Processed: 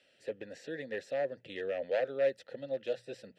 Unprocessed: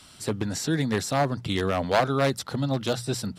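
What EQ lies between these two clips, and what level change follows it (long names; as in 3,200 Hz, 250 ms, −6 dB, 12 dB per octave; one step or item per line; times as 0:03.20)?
formant filter e
0.0 dB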